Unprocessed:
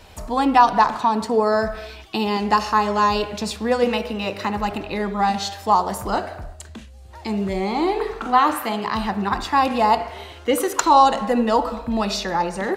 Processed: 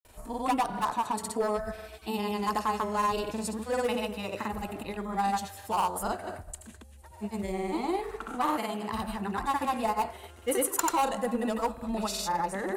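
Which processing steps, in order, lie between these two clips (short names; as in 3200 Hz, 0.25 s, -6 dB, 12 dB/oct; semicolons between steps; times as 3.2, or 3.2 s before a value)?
hard clip -12.5 dBFS, distortion -13 dB; grains, pitch spread up and down by 0 st; resonant high shelf 7000 Hz +11 dB, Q 1.5; gain -8 dB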